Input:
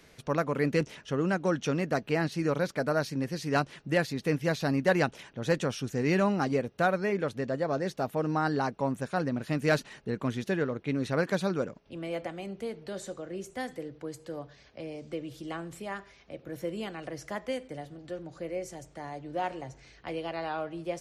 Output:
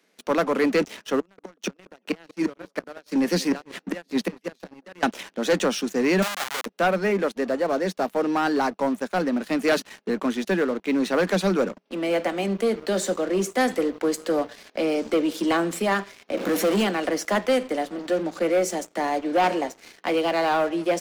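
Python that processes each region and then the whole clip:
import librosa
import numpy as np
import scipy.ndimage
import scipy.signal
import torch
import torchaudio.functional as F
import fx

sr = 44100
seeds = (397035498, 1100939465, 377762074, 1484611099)

y = fx.chain(x, sr, fx.tremolo_shape(shape='triangle', hz=4.8, depth_pct=55),
    fx.gate_flip(shuts_db=-23.0, range_db=-25),
    fx.echo_banded(ms=189, feedback_pct=54, hz=730.0, wet_db=-16), at=(1.19, 5.03))
y = fx.chain(y, sr, fx.high_shelf(hz=5700.0, db=11.0),
    fx.schmitt(flips_db=-27.5),
    fx.highpass(hz=990.0, slope=12), at=(6.22, 6.66))
y = fx.chain(y, sr, fx.comb_fb(f0_hz=98.0, decay_s=0.17, harmonics='all', damping=0.0, mix_pct=50),
    fx.power_curve(exponent=0.5), at=(16.37, 16.83))
y = scipy.signal.sosfilt(scipy.signal.butter(16, 180.0, 'highpass', fs=sr, output='sos'), y)
y = fx.rider(y, sr, range_db=10, speed_s=2.0)
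y = fx.leveller(y, sr, passes=3)
y = y * librosa.db_to_amplitude(-1.0)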